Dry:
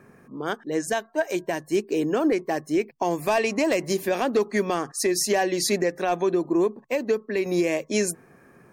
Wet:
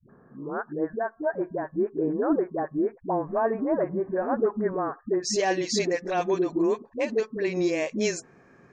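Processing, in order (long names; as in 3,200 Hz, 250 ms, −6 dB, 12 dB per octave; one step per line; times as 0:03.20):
Butterworth low-pass 1,600 Hz 48 dB per octave, from 0:05.13 7,200 Hz
all-pass dispersion highs, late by 94 ms, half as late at 300 Hz
level −2 dB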